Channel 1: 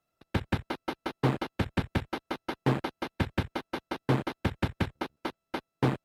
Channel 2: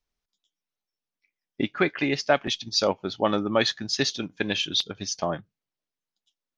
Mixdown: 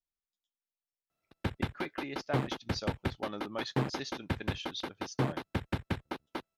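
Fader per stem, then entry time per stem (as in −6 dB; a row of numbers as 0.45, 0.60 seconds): −4.5, −16.0 decibels; 1.10, 0.00 seconds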